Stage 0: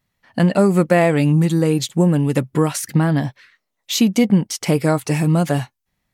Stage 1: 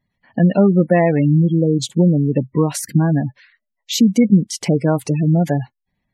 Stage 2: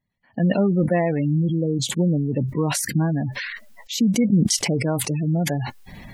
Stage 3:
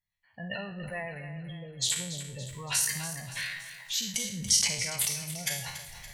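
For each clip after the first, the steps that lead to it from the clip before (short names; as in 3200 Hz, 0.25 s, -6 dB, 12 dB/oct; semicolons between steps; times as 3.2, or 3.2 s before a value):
spectral gate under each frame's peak -20 dB strong; bell 210 Hz +3 dB 0.77 oct; notch 1300 Hz, Q 6.1
sustainer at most 31 dB/s; gain -7 dB
spectral trails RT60 0.57 s; passive tone stack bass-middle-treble 10-0-10; split-band echo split 450 Hz, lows 0.172 s, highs 0.284 s, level -12 dB; gain -3 dB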